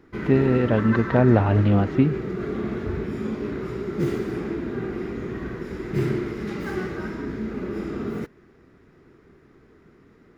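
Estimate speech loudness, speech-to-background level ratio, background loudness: -20.5 LUFS, 9.0 dB, -29.5 LUFS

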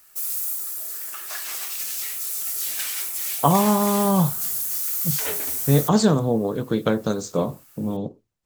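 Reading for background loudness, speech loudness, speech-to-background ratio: -25.0 LUFS, -22.5 LUFS, 2.5 dB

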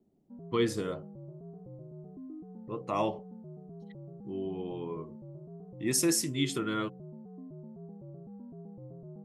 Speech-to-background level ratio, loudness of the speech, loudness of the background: 15.0 dB, -32.5 LUFS, -47.5 LUFS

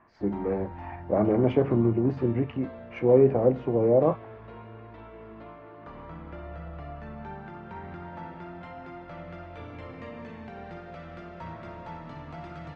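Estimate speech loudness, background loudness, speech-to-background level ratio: -24.5 LUFS, -42.5 LUFS, 18.0 dB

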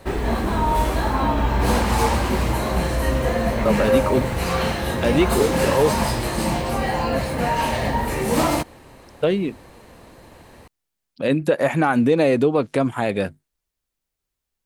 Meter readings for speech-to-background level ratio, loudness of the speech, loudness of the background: 0.5 dB, -21.0 LUFS, -21.5 LUFS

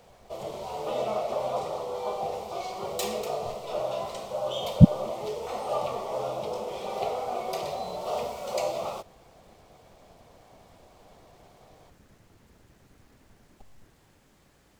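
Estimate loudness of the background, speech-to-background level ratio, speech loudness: -32.5 LUFS, 13.0 dB, -19.5 LUFS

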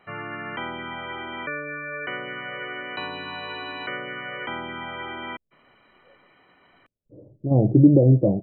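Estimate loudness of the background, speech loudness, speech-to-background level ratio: -32.5 LUFS, -17.0 LUFS, 15.5 dB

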